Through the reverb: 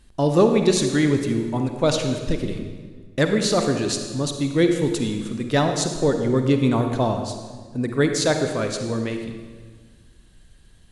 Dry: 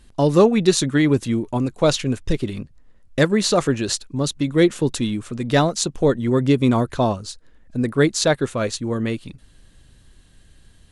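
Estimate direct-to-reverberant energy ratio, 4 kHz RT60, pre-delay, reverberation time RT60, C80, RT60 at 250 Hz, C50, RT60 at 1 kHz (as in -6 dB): 5.0 dB, 1.3 s, 38 ms, 1.6 s, 7.5 dB, 1.8 s, 6.0 dB, 1.5 s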